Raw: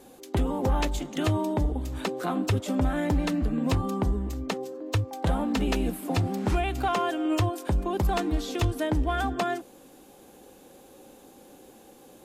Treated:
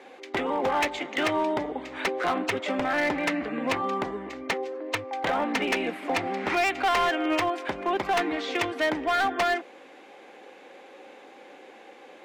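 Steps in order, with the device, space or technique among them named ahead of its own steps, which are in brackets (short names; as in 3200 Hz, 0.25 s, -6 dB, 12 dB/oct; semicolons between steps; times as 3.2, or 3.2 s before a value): megaphone (BPF 460–3200 Hz; bell 2100 Hz +11 dB 0.59 oct; hard clip -26.5 dBFS, distortion -10 dB); gain +6.5 dB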